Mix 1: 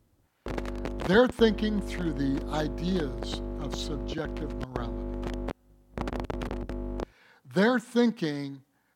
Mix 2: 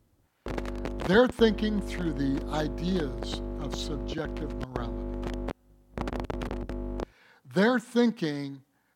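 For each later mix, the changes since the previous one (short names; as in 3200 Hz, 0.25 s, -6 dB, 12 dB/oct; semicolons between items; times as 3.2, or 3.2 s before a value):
none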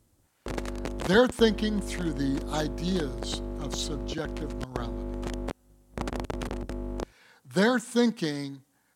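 master: add bell 8600 Hz +9.5 dB 1.5 oct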